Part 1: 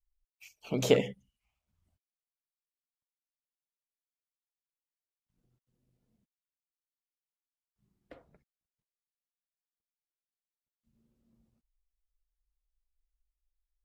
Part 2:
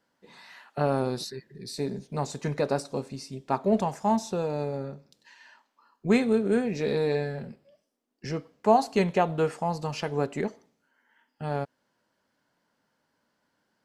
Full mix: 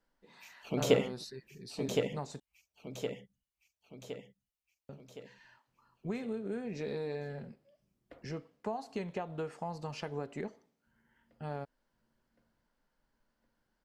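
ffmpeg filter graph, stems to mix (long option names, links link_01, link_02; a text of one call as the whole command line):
ffmpeg -i stem1.wav -i stem2.wav -filter_complex "[0:a]volume=-2.5dB,asplit=2[link_01][link_02];[link_02]volume=-5dB[link_03];[1:a]highshelf=frequency=7000:gain=-6,acompressor=threshold=-26dB:ratio=10,volume=-7.5dB,asplit=3[link_04][link_05][link_06];[link_04]atrim=end=2.4,asetpts=PTS-STARTPTS,afade=type=out:start_time=2.396:duration=0.004:curve=hsin[link_07];[link_05]atrim=start=2.4:end=4.89,asetpts=PTS-STARTPTS,volume=0[link_08];[link_06]atrim=start=4.89,asetpts=PTS-STARTPTS,afade=type=in:duration=0.004:curve=hsin[link_09];[link_07][link_08][link_09]concat=n=3:v=0:a=1[link_10];[link_03]aecho=0:1:1065|2130|3195|4260|5325|6390|7455:1|0.49|0.24|0.118|0.0576|0.0282|0.0138[link_11];[link_01][link_10][link_11]amix=inputs=3:normalize=0" out.wav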